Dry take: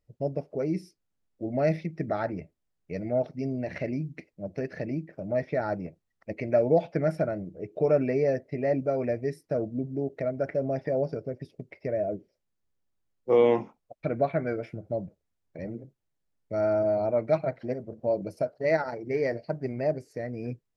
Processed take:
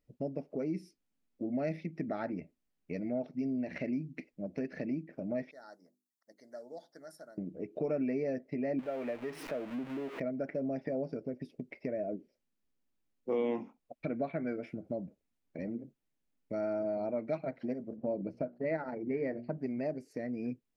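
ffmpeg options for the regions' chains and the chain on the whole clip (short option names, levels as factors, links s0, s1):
-filter_complex "[0:a]asettb=1/sr,asplit=3[s0][s1][s2];[s0]atrim=end=5.514[s3];[s1]atrim=start=5.51:end=7.38,asetpts=PTS-STARTPTS,afade=t=in:d=0.004:c=qsin,afade=t=out:st=1.866:d=0.004:c=qsin,asuperstop=centerf=2500:order=4:qfactor=1.1,aderivative,bandreject=f=50:t=h:w=6,bandreject=f=100:t=h:w=6,bandreject=f=150:t=h:w=6,bandreject=f=200:t=h:w=6,bandreject=f=250:t=h:w=6,bandreject=f=300:t=h:w=6,bandreject=f=350:t=h:w=6,bandreject=f=400:t=h:w=6[s4];[s2]atrim=start=7.376[s5];[s3][s4]acrossfade=d=0.004:c1=hsin:c2=qsin[s6];[s6][s5]acrossfade=d=0.004:c1=qsin:c2=hsin,asettb=1/sr,asplit=3[s7][s8][s9];[s7]atrim=end=8.794[s10];[s8]atrim=start=8.79:end=10.2,asetpts=PTS-STARTPTS,afade=t=in:d=0.004:c=qsin,afade=t=out:st=1.406:d=0.004:c=qsin,aeval=exprs='val(0)+0.5*0.0178*sgn(val(0))':c=same,acrossover=split=490 3200:gain=0.224 1 0.2[s11][s12][s13];[s11][s12][s13]amix=inputs=3:normalize=0,acompressor=mode=upward:threshold=0.02:ratio=2.5:attack=3.2:release=140:knee=2.83:detection=peak[s14];[s9]atrim=start=10.196[s15];[s10][s14]acrossfade=d=0.004:c1=hsin:c2=qsin[s16];[s16][s15]acrossfade=d=0.004:c1=qsin:c2=hsin,asettb=1/sr,asplit=3[s17][s18][s19];[s17]atrim=end=17.964[s20];[s18]atrim=start=17.96:end=19.58,asetpts=PTS-STARTPTS,afade=t=in:d=0.004:c=qsin,afade=t=out:st=1.616:d=0.004:c=qsin,lowpass=2500,lowshelf=f=240:g=6,bandreject=f=60:t=h:w=6,bandreject=f=120:t=h:w=6,bandreject=f=180:t=h:w=6,bandreject=f=240:t=h:w=6,bandreject=f=300:t=h:w=6,bandreject=f=360:t=h:w=6[s21];[s19]atrim=start=19.576[s22];[s20][s21]acrossfade=d=0.004:c1=hsin:c2=qsin[s23];[s23][s22]acrossfade=d=0.004:c1=qsin:c2=hsin,equalizer=f=100:t=o:w=0.67:g=-9,equalizer=f=250:t=o:w=0.67:g=10,equalizer=f=2500:t=o:w=0.67:g=4,acompressor=threshold=0.02:ratio=2,volume=0.708"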